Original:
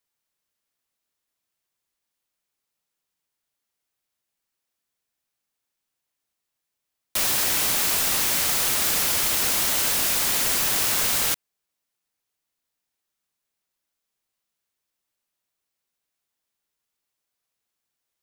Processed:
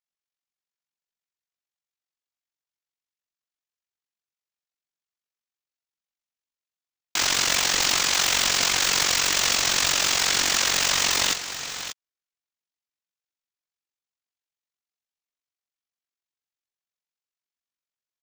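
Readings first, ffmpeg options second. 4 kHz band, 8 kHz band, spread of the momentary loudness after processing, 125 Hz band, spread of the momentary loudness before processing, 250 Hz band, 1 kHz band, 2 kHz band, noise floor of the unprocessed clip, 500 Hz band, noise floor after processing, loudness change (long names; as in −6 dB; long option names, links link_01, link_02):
+5.5 dB, +1.5 dB, 10 LU, −1.0 dB, 2 LU, −0.5 dB, +3.0 dB, +4.5 dB, −83 dBFS, +1.0 dB, below −85 dBFS, −0.5 dB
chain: -filter_complex "[0:a]highpass=390,afwtdn=0.0178,equalizer=frequency=520:width_type=o:width=1.4:gain=-6.5,aresample=16000,acrusher=bits=2:mode=log:mix=0:aa=0.000001,aresample=44100,tremolo=f=46:d=0.75,asplit=2[link_01][link_02];[link_02]aecho=0:1:46|554|588:0.282|0.141|0.282[link_03];[link_01][link_03]amix=inputs=2:normalize=0,aeval=exprs='val(0)*sgn(sin(2*PI*300*n/s))':channel_layout=same,volume=8dB"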